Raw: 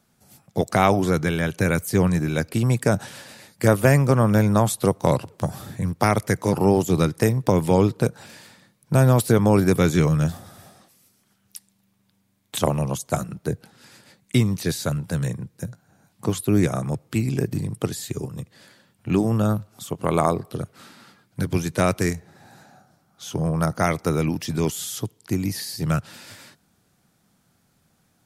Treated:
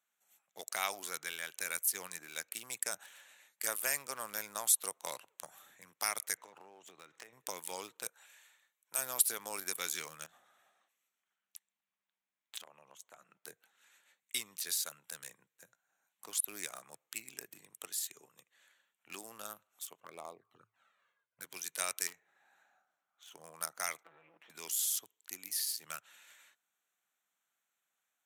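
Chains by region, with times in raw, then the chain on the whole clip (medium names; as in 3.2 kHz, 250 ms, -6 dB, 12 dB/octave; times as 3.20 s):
6.37–7.33 s: companding laws mixed up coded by mu + compression 10:1, threshold -24 dBFS + distance through air 100 m
8.08–8.98 s: high-pass 470 Hz 6 dB/octave + treble shelf 9.1 kHz +5 dB
10.26–13.45 s: low-pass 2.7 kHz 6 dB/octave + compression 5:1, threshold -29 dBFS
20.00–21.41 s: low-pass 1.1 kHz 6 dB/octave + peaking EQ 110 Hz +13 dB 0.23 oct + touch-sensitive flanger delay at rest 2 ms, full sweep at -16 dBFS
22.07–23.32 s: tone controls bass 0 dB, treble -8 dB + hard clipper -22.5 dBFS
24.03–24.50 s: comb filter that takes the minimum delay 6 ms + compression 12:1, threshold -27 dBFS + distance through air 460 m
whole clip: local Wiener filter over 9 samples; high-pass 610 Hz 6 dB/octave; differentiator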